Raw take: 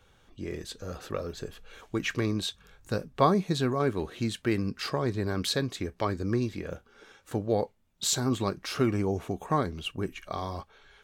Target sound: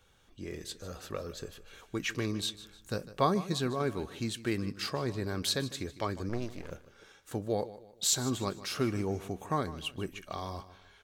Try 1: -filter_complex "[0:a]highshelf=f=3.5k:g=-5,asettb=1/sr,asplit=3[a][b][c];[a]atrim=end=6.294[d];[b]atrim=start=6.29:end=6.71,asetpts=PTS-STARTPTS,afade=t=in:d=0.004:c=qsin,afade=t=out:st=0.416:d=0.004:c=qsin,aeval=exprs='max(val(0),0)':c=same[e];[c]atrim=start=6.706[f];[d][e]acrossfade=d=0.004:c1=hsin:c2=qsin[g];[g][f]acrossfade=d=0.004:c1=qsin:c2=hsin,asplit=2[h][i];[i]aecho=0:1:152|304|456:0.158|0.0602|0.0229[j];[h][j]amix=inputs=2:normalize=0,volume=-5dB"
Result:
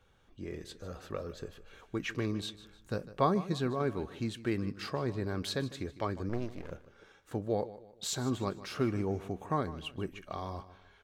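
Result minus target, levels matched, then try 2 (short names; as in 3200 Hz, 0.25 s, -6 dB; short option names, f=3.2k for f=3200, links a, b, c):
8000 Hz band -8.0 dB
-filter_complex "[0:a]highshelf=f=3.5k:g=6.5,asettb=1/sr,asplit=3[a][b][c];[a]atrim=end=6.294[d];[b]atrim=start=6.29:end=6.71,asetpts=PTS-STARTPTS,afade=t=in:d=0.004:c=qsin,afade=t=out:st=0.416:d=0.004:c=qsin,aeval=exprs='max(val(0),0)':c=same[e];[c]atrim=start=6.706[f];[d][e]acrossfade=d=0.004:c1=hsin:c2=qsin[g];[g][f]acrossfade=d=0.004:c1=qsin:c2=hsin,asplit=2[h][i];[i]aecho=0:1:152|304|456:0.158|0.0602|0.0229[j];[h][j]amix=inputs=2:normalize=0,volume=-5dB"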